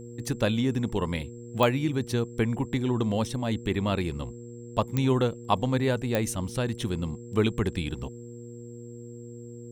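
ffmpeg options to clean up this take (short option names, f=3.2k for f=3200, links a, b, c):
-af "adeclick=t=4,bandreject=f=119:t=h:w=4,bandreject=f=238:t=h:w=4,bandreject=f=357:t=h:w=4,bandreject=f=476:t=h:w=4,bandreject=f=7.6k:w=30"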